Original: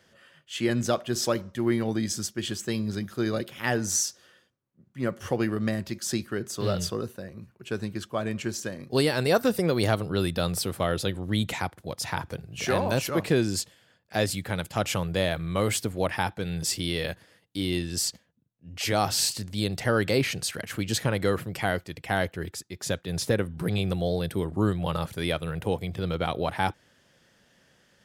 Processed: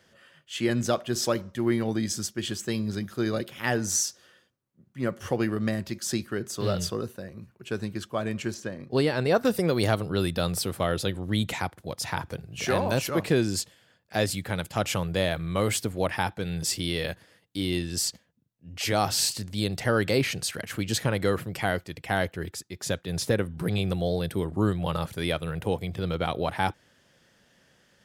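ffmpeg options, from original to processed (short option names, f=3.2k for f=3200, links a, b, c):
-filter_complex "[0:a]asettb=1/sr,asplit=3[a][b][c];[a]atrim=end=8.544[d];[b]atrim=start=8.54:end=9.45,asetpts=PTS-STARTPTS,afade=t=in:d=0.004:c=qsin,afade=t=out:st=0.906:d=0.004:c=qsin,lowpass=f=2.6k:p=1[e];[c]atrim=start=9.446[f];[d][e]acrossfade=d=0.004:c1=hsin:c2=qsin[g];[g][f]acrossfade=d=0.004:c1=qsin:c2=hsin"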